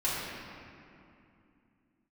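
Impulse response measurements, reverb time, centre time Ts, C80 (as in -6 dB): 2.6 s, 151 ms, -1.0 dB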